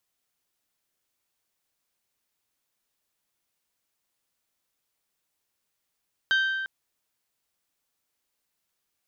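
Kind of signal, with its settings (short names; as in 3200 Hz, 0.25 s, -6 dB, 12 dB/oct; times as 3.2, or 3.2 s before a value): glass hit bell, length 0.35 s, lowest mode 1560 Hz, decay 1.89 s, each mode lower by 7 dB, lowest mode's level -19 dB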